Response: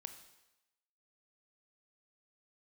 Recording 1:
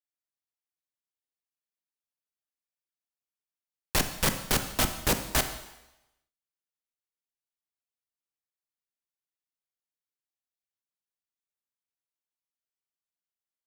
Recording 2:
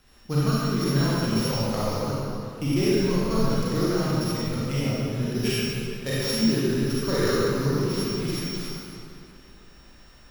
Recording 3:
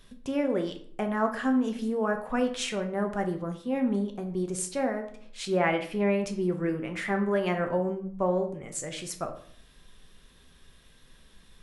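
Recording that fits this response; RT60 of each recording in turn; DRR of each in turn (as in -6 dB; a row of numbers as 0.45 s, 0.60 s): 1; 0.95 s, 2.6 s, 0.55 s; 7.5 dB, -9.0 dB, 4.5 dB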